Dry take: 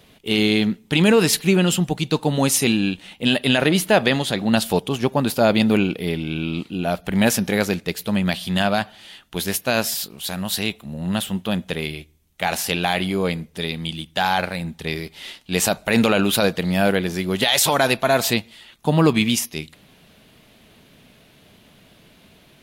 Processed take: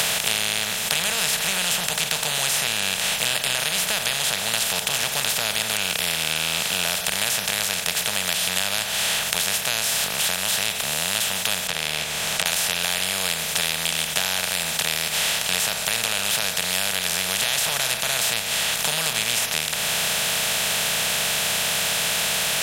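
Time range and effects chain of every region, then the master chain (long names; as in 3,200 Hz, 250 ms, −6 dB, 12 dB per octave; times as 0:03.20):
0:11.67–0:12.46: low-pass filter 1,300 Hz + downward compressor, threshold −33 dBFS
whole clip: compressor on every frequency bin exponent 0.2; guitar amp tone stack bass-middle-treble 10-0-10; multiband upward and downward compressor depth 100%; level −8 dB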